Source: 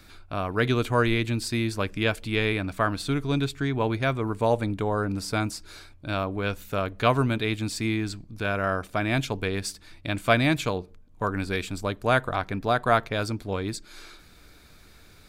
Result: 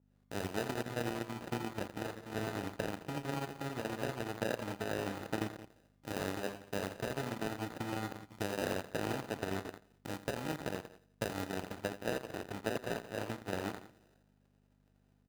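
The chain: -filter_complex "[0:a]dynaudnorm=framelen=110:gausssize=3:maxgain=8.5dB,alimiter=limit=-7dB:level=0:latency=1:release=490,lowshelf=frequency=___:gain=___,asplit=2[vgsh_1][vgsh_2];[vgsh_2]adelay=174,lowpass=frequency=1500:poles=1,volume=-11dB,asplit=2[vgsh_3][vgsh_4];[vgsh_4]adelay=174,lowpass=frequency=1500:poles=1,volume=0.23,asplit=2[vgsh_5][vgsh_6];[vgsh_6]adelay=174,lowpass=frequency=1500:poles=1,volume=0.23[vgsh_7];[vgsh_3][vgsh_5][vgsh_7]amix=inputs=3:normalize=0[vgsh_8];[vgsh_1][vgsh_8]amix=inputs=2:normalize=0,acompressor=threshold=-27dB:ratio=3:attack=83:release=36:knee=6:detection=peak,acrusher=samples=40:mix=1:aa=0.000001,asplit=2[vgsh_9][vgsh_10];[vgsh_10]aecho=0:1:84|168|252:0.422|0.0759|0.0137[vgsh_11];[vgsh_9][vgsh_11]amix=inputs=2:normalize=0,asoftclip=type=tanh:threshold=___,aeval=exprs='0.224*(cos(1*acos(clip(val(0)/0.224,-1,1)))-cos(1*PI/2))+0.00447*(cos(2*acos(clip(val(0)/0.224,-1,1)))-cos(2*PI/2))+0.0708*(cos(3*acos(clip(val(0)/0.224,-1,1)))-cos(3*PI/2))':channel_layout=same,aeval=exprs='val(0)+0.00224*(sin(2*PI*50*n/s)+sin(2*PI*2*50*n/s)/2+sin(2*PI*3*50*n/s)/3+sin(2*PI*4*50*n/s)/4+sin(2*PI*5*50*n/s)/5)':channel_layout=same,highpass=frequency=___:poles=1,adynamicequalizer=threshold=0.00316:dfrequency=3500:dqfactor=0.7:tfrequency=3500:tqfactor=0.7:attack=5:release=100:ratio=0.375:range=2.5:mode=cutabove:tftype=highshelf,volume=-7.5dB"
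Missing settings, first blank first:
340, 3.5, -13dB, 220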